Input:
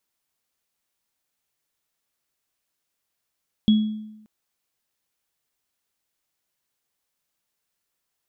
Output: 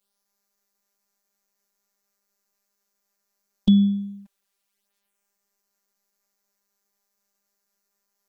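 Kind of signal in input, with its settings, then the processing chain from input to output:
inharmonic partials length 0.58 s, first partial 215 Hz, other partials 3,340 Hz, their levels −14 dB, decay 0.90 s, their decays 0.49 s, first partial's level −11 dB
in parallel at +2.5 dB: brickwall limiter −20 dBFS
on the sum: phases set to zero 200 Hz
flanger swept by the level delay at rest 10.3 ms, full sweep at −26.5 dBFS

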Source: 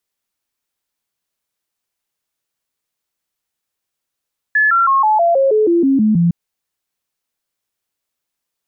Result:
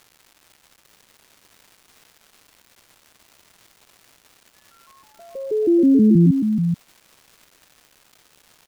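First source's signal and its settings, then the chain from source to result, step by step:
stepped sweep 1,720 Hz down, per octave 3, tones 11, 0.16 s, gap 0.00 s −9.5 dBFS
inverse Chebyshev low-pass filter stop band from 740 Hz, stop band 40 dB
surface crackle 430 per second −39 dBFS
on a send: single-tap delay 432 ms −6.5 dB

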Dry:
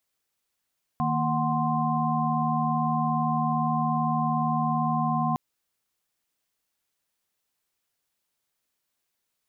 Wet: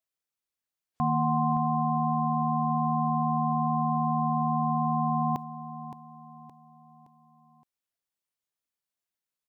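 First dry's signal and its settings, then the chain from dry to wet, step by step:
held notes D#3/A#3/F#5/C6 sine, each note −28 dBFS 4.36 s
noise reduction from a noise print of the clip's start 12 dB
repeating echo 568 ms, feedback 42%, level −12 dB

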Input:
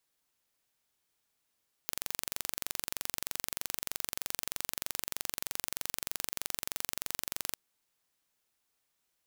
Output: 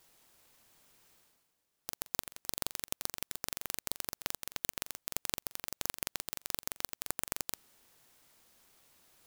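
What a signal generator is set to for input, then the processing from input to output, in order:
impulse train 23.2 per second, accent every 0, −6.5 dBFS 5.69 s
reversed playback
upward compression, threshold −49 dBFS
reversed playback
converter with an unsteady clock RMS 0.14 ms

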